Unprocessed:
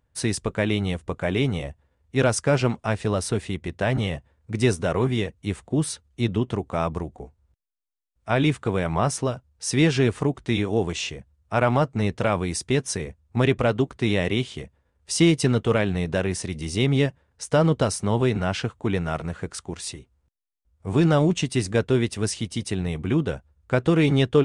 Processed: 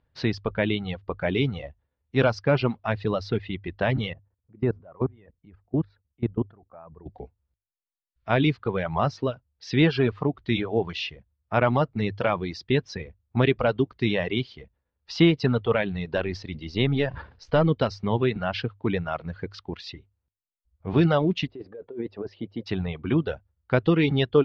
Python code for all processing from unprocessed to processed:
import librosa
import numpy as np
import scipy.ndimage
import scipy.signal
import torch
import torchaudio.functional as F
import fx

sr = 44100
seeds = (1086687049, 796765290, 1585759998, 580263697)

y = fx.chain(x, sr, fx.lowpass(hz=1200.0, slope=12),
    fx.level_steps(step_db=21), at=(4.13, 7.06))
y = fx.chain(y, sr, fx.halfwave_gain(db=-3.0),
    fx.sustainer(db_per_s=75.0), at=(16.17, 17.69))
y = fx.chain(y, sr, fx.bandpass_q(hz=480.0, q=1.5),
    fx.over_compress(threshold_db=-31.0, ratio=-1.0), at=(21.47, 22.66))
y = fx.dereverb_blind(y, sr, rt60_s=1.6)
y = scipy.signal.sosfilt(scipy.signal.butter(8, 4800.0, 'lowpass', fs=sr, output='sos'), y)
y = fx.hum_notches(y, sr, base_hz=50, count=2)